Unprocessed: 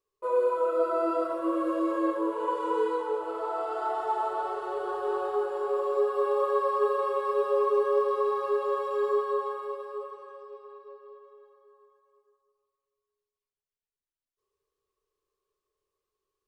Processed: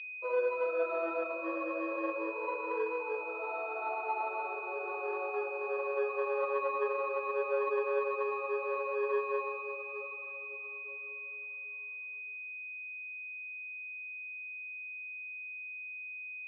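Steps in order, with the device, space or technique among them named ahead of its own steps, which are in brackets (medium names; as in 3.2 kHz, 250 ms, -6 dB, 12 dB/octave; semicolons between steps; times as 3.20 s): 8.75–9.69 s: comb 2 ms, depth 43%; toy sound module (decimation joined by straight lines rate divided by 6×; class-D stage that switches slowly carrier 2.5 kHz; cabinet simulation 680–3900 Hz, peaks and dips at 690 Hz -4 dB, 980 Hz -6 dB, 1.6 kHz -4 dB, 2.3 kHz -8 dB); trim +2 dB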